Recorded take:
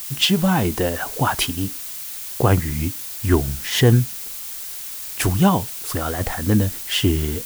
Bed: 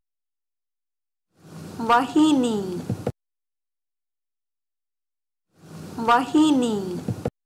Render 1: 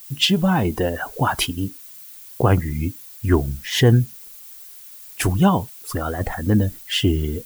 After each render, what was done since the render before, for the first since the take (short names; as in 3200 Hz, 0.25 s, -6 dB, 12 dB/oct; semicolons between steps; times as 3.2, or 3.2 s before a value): denoiser 13 dB, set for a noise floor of -32 dBFS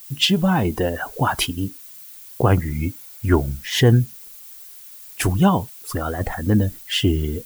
2.62–3.56 small resonant body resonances 570/860/1400/2200 Hz, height 8 dB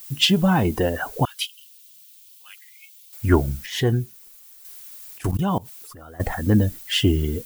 1.25–3.13 ladder high-pass 2500 Hz, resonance 40%; 3.66–4.65 resonator 370 Hz, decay 0.16 s; 5.17–6.2 level quantiser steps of 21 dB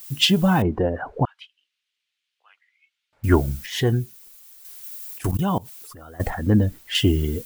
0.62–3.24 LPF 1200 Hz; 4.83–5.52 high shelf 9200 Hz +5 dB; 6.3–6.95 high shelf 3500 Hz -10 dB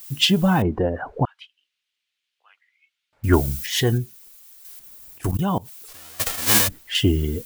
3.33–3.98 high shelf 2900 Hz +9 dB; 4.79–5.23 tilt shelf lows +7.5 dB, about 920 Hz; 5.87–6.67 spectral whitening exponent 0.1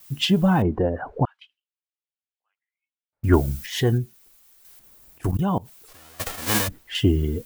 gate with hold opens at -38 dBFS; high shelf 2100 Hz -8 dB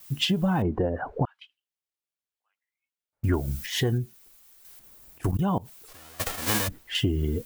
compressor 6:1, threshold -21 dBFS, peak gain reduction 10 dB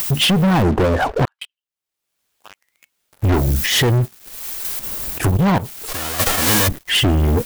upward compressor, threshold -34 dBFS; sample leveller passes 5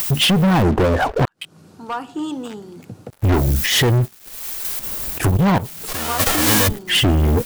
add bed -8.5 dB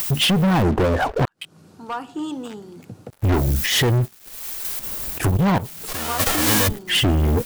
gain -2.5 dB